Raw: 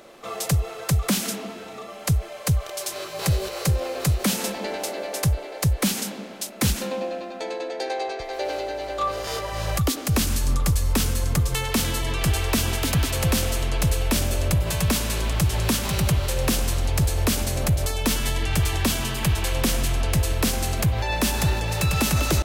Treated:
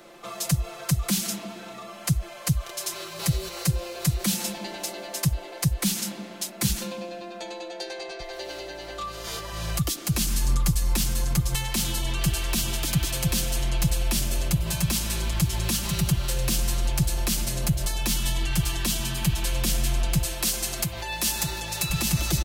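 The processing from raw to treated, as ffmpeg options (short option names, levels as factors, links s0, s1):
-filter_complex "[0:a]asettb=1/sr,asplit=3[s0][s1][s2];[s0]atrim=end=20.254[s3];[s1]atrim=start=20.25:end=21.9,asetpts=PTS-STARTPTS,afade=t=in:d=0.004:c=qsin,afade=t=out:st=1.646:d=0.004:c=qsin,bass=f=250:g=-9,treble=f=4000:g=3[s4];[s2]atrim=start=21.896[s5];[s3][s4]acrossfade=d=0.004:c1=hsin:c2=qsin[s6];[s6][s5]acrossfade=d=0.004:c1=qsin:c2=hsin,equalizer=f=510:w=4.9:g=-4.5,aecho=1:1:5.8:0.84,acrossover=split=200|3000[s7][s8][s9];[s8]acompressor=threshold=0.0178:ratio=2.5[s10];[s7][s10][s9]amix=inputs=3:normalize=0,volume=0.75"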